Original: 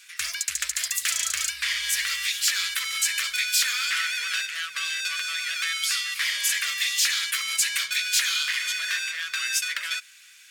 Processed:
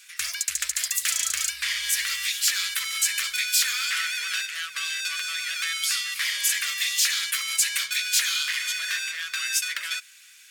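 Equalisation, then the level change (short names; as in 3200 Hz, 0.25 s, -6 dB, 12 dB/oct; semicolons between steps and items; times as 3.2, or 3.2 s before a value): high shelf 7000 Hz +5 dB; -1.5 dB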